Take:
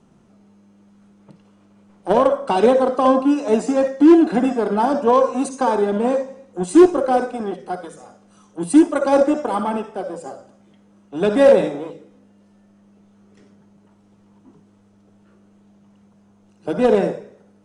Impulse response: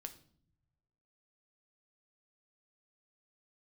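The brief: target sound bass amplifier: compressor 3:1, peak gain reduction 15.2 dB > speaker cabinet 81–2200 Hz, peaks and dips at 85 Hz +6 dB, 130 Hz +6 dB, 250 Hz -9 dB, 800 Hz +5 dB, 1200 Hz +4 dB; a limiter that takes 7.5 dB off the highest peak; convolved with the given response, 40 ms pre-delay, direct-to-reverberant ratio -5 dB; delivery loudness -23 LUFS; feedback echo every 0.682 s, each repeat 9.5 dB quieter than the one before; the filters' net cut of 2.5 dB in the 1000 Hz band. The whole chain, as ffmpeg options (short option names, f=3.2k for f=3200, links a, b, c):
-filter_complex "[0:a]equalizer=f=1k:t=o:g=-8.5,alimiter=limit=-10.5dB:level=0:latency=1,aecho=1:1:682|1364|2046|2728:0.335|0.111|0.0365|0.012,asplit=2[a][b];[1:a]atrim=start_sample=2205,adelay=40[c];[b][c]afir=irnorm=-1:irlink=0,volume=9.5dB[d];[a][d]amix=inputs=2:normalize=0,acompressor=threshold=-25dB:ratio=3,highpass=f=81:w=0.5412,highpass=f=81:w=1.3066,equalizer=f=85:t=q:w=4:g=6,equalizer=f=130:t=q:w=4:g=6,equalizer=f=250:t=q:w=4:g=-9,equalizer=f=800:t=q:w=4:g=5,equalizer=f=1.2k:t=q:w=4:g=4,lowpass=f=2.2k:w=0.5412,lowpass=f=2.2k:w=1.3066,volume=4dB"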